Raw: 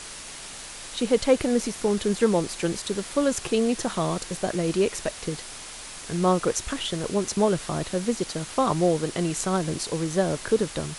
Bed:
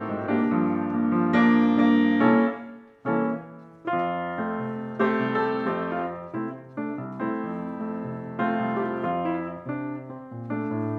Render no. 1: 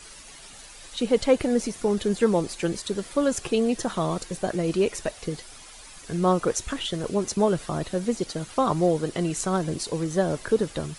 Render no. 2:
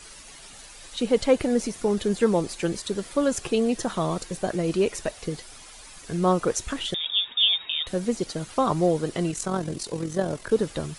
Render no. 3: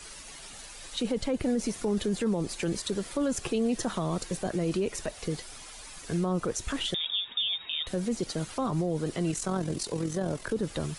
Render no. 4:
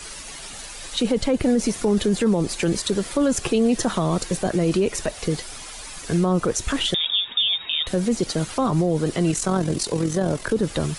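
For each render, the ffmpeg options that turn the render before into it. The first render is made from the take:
-af "afftdn=nr=10:nf=-40"
-filter_complex "[0:a]asettb=1/sr,asplit=3[s0][s1][s2];[s0]atrim=end=6.944[s3];[s1]atrim=start=6.94:end=7.87,asetpts=PTS-STARTPTS,afade=t=in:d=0.004:c=qsin,afade=t=out:st=0.926:d=0.004:c=qsin,lowpass=f=3200:t=q:w=0.5098,lowpass=f=3200:t=q:w=0.6013,lowpass=f=3200:t=q:w=0.9,lowpass=f=3200:t=q:w=2.563,afreqshift=-3800[s4];[s2]atrim=start=7.866[s5];[s3][s4]acrossfade=d=0.004:c1=hsin:c2=qsin[s6];[s6][s5]acrossfade=d=0.004:c1=qsin:c2=hsin,asettb=1/sr,asplit=3[s7][s8][s9];[s7]atrim=end=9.314[s10];[s8]atrim=start=9.31:end=10.52,asetpts=PTS-STARTPTS,afade=t=in:d=0.004:c=qsin,afade=t=out:st=1.206:d=0.004:c=qsin,tremolo=f=43:d=0.571[s11];[s9]atrim=start=10.516[s12];[s10][s11]acrossfade=d=0.004:c1=hsin:c2=qsin[s13];[s13][s12]acrossfade=d=0.004:c1=qsin:c2=hsin"
-filter_complex "[0:a]acrossover=split=290[s0][s1];[s1]acompressor=threshold=0.0398:ratio=3[s2];[s0][s2]amix=inputs=2:normalize=0,alimiter=limit=0.0944:level=0:latency=1:release=15"
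-af "volume=2.66"

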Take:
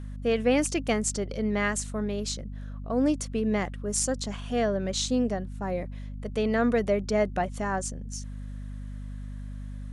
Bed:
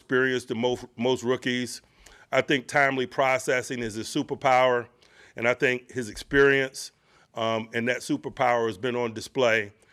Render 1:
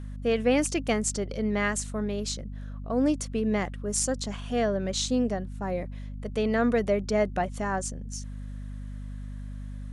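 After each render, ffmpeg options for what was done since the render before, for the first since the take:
-af anull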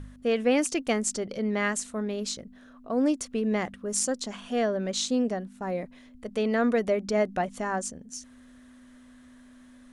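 -af "bandreject=f=50:t=h:w=4,bandreject=f=100:t=h:w=4,bandreject=f=150:t=h:w=4,bandreject=f=200:t=h:w=4"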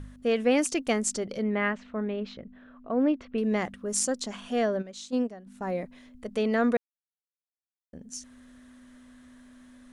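-filter_complex "[0:a]asettb=1/sr,asplit=3[s0][s1][s2];[s0]atrim=end=1.434[s3];[s1]atrim=start=1.43:end=3.38,asetpts=PTS-STARTPTS,afade=t=in:d=0.004:c=qsin,afade=t=out:st=1.946:d=0.004:c=qsin,lowpass=f=3000:w=0.5412,lowpass=f=3000:w=1.3066[s4];[s2]atrim=start=3.376[s5];[s3][s4]acrossfade=d=0.004:c1=hsin:c2=qsin[s6];[s6][s5]acrossfade=d=0.004:c1=qsin:c2=hsin,asplit=3[s7][s8][s9];[s7]afade=t=out:st=4.81:d=0.02[s10];[s8]agate=range=0.224:threshold=0.0562:ratio=16:release=100:detection=peak,afade=t=in:st=4.81:d=0.02,afade=t=out:st=5.46:d=0.02[s11];[s9]afade=t=in:st=5.46:d=0.02[s12];[s10][s11][s12]amix=inputs=3:normalize=0,asplit=3[s13][s14][s15];[s13]atrim=end=6.77,asetpts=PTS-STARTPTS,afade=t=out:st=6.766:d=0.004:c=hsin[s16];[s14]atrim=start=6.77:end=7.93,asetpts=PTS-STARTPTS,volume=0[s17];[s15]atrim=start=7.93,asetpts=PTS-STARTPTS,afade=t=in:d=0.004:c=hsin[s18];[s16][s17][s18]concat=n=3:v=0:a=1"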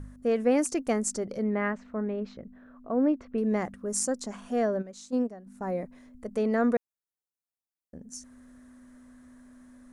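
-af "equalizer=f=3200:t=o:w=1.1:g=-12.5"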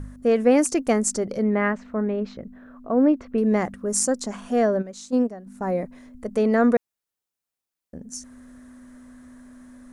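-af "volume=2.11"

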